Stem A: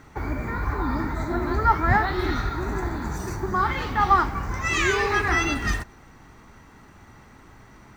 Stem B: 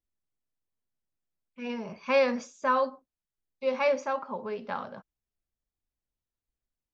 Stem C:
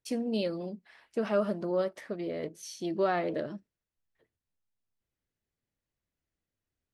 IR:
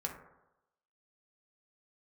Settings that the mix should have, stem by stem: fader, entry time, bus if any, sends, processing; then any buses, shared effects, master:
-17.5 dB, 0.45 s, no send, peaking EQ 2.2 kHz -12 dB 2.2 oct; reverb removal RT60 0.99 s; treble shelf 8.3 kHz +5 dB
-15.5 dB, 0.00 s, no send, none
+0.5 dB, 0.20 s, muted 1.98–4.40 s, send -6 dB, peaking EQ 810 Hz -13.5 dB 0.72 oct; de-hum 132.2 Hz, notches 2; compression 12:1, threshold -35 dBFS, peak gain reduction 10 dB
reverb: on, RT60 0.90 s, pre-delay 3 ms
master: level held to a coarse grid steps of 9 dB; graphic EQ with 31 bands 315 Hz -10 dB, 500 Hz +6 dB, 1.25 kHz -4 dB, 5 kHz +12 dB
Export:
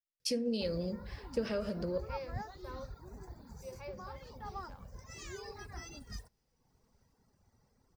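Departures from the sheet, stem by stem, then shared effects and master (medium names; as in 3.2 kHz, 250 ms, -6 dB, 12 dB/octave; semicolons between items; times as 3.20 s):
stem B -15.5 dB -> -23.5 dB; master: missing level held to a coarse grid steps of 9 dB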